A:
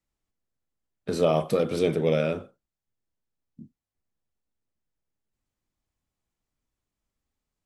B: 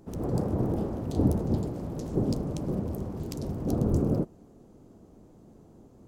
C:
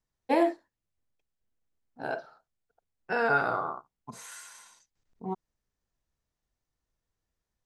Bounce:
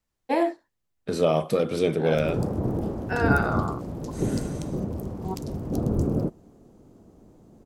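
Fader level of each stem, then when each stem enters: +0.5 dB, +1.0 dB, +1.0 dB; 0.00 s, 2.05 s, 0.00 s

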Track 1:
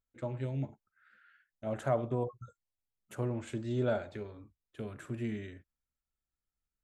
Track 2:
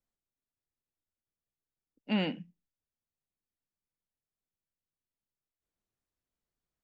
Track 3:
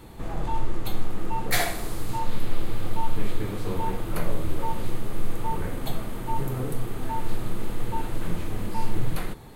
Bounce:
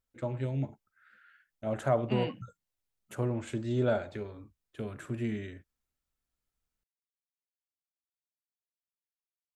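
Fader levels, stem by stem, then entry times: +3.0 dB, -5.5 dB, mute; 0.00 s, 0.00 s, mute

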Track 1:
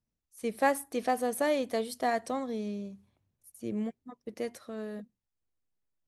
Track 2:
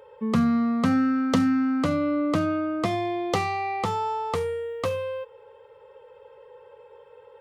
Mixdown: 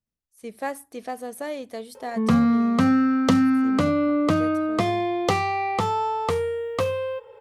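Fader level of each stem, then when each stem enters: -3.5 dB, +3.0 dB; 0.00 s, 1.95 s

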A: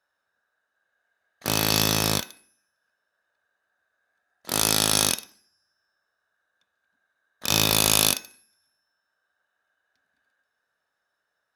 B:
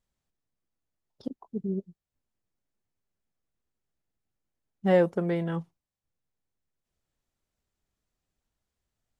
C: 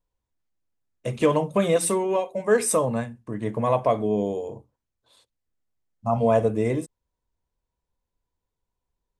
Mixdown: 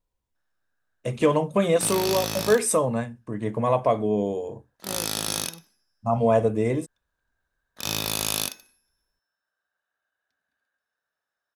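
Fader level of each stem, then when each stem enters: -7.0 dB, -16.5 dB, 0.0 dB; 0.35 s, 0.00 s, 0.00 s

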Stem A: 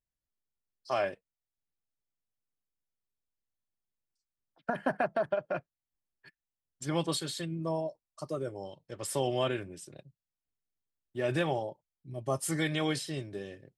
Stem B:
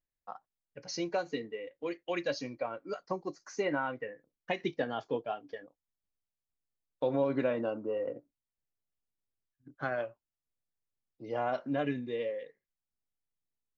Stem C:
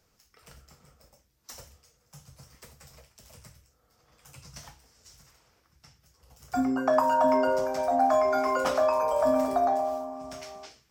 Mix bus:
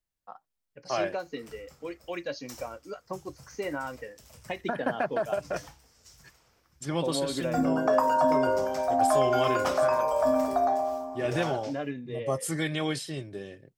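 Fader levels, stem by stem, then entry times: +1.0 dB, -1.5 dB, -0.5 dB; 0.00 s, 0.00 s, 1.00 s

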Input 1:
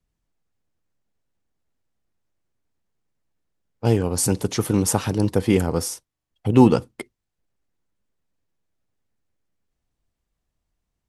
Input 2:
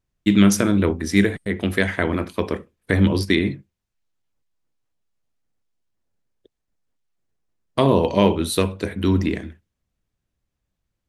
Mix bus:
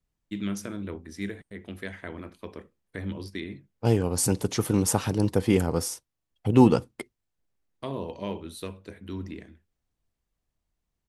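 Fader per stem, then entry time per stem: -3.5 dB, -17.0 dB; 0.00 s, 0.05 s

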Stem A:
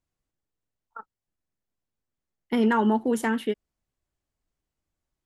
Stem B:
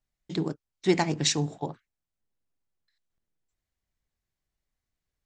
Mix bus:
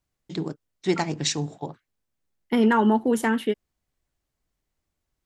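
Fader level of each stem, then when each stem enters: +2.5 dB, -0.5 dB; 0.00 s, 0.00 s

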